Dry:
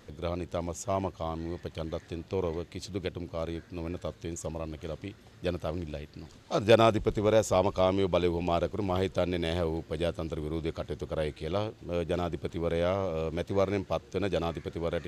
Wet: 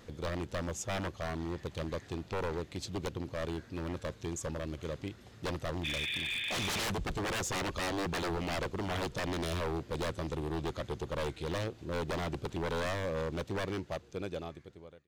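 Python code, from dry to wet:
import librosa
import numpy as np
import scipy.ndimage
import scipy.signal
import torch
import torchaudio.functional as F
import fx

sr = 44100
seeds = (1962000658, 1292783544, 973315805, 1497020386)

y = fx.fade_out_tail(x, sr, length_s=2.14)
y = fx.spec_repair(y, sr, seeds[0], start_s=5.87, length_s=0.95, low_hz=1600.0, high_hz=3700.0, source='after')
y = 10.0 ** (-29.0 / 20.0) * (np.abs((y / 10.0 ** (-29.0 / 20.0) + 3.0) % 4.0 - 2.0) - 1.0)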